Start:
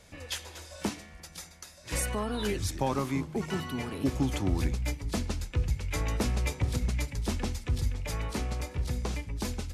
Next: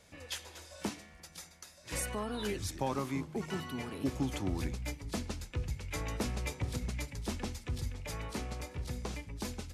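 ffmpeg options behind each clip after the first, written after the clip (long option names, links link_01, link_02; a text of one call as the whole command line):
ffmpeg -i in.wav -af "lowshelf=frequency=65:gain=-8,volume=-4.5dB" out.wav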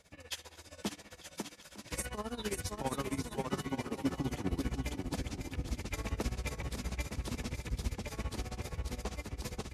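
ffmpeg -i in.wav -filter_complex "[0:a]asplit=2[link_01][link_02];[link_02]aecho=0:1:550|907.5|1140|1291|1389:0.631|0.398|0.251|0.158|0.1[link_03];[link_01][link_03]amix=inputs=2:normalize=0,tremolo=f=15:d=0.86,volume=1dB" out.wav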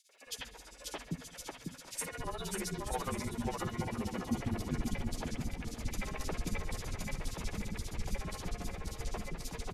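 ffmpeg -i in.wav -filter_complex "[0:a]afreqshift=-37,acrossover=split=340|3200[link_01][link_02][link_03];[link_02]adelay=90[link_04];[link_01]adelay=260[link_05];[link_05][link_04][link_03]amix=inputs=3:normalize=0,volume=1.5dB" out.wav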